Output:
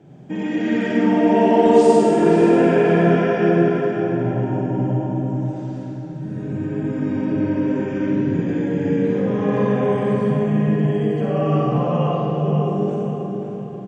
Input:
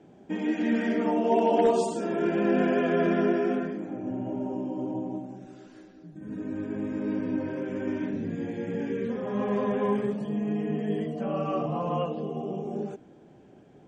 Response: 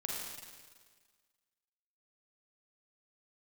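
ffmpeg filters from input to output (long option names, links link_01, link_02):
-filter_complex "[0:a]equalizer=frequency=130:width_type=o:width=0.61:gain=14,asplit=2[link_01][link_02];[link_02]adelay=534,lowpass=frequency=3900:poles=1,volume=-5.5dB,asplit=2[link_03][link_04];[link_04]adelay=534,lowpass=frequency=3900:poles=1,volume=0.43,asplit=2[link_05][link_06];[link_06]adelay=534,lowpass=frequency=3900:poles=1,volume=0.43,asplit=2[link_07][link_08];[link_08]adelay=534,lowpass=frequency=3900:poles=1,volume=0.43,asplit=2[link_09][link_10];[link_10]adelay=534,lowpass=frequency=3900:poles=1,volume=0.43[link_11];[link_01][link_03][link_05][link_07][link_09][link_11]amix=inputs=6:normalize=0[link_12];[1:a]atrim=start_sample=2205,asetrate=39690,aresample=44100[link_13];[link_12][link_13]afir=irnorm=-1:irlink=0,volume=4.5dB"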